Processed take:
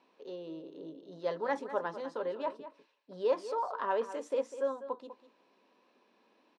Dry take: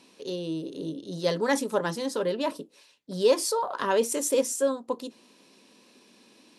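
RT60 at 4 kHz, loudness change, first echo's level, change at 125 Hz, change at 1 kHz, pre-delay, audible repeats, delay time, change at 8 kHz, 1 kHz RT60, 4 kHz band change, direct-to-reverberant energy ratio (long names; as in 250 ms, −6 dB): no reverb audible, −8.0 dB, −13.0 dB, below −15 dB, −4.5 dB, no reverb audible, 1, 199 ms, below −25 dB, no reverb audible, −17.5 dB, no reverb audible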